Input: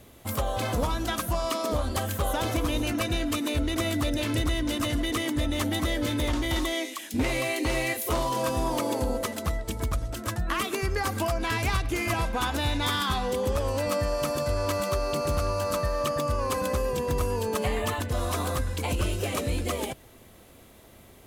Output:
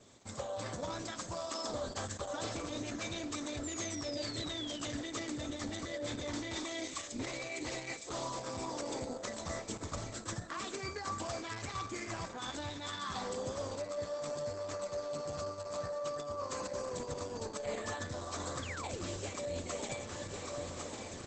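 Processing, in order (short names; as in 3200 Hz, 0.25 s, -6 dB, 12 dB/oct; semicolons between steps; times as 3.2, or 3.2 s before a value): HPF 91 Hz 24 dB/oct; feedback echo 1.103 s, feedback 54%, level -18 dB; AGC gain up to 11.5 dB; high shelf 5300 Hz +11.5 dB; resonator 580 Hz, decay 0.45 s, mix 80%; on a send at -23 dB: reverb RT60 0.45 s, pre-delay 47 ms; on the sum: painted sound fall, 3.63–4.87, 2800–7500 Hz -33 dBFS; Chebyshev low-pass 12000 Hz, order 8; painted sound fall, 18.62–19.07, 240–3600 Hz -36 dBFS; reverse; compressor 10:1, threshold -41 dBFS, peak gain reduction 20 dB; reverse; bell 2800 Hz -8.5 dB 0.38 oct; gain +6 dB; Opus 10 kbps 48000 Hz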